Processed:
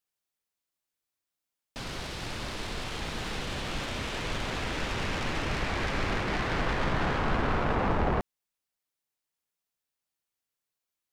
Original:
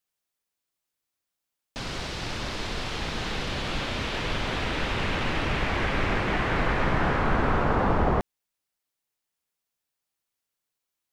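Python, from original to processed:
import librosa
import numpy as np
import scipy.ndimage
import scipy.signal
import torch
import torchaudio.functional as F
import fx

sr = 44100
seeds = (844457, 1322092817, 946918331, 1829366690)

y = fx.self_delay(x, sr, depth_ms=0.21)
y = y * librosa.db_to_amplitude(-3.5)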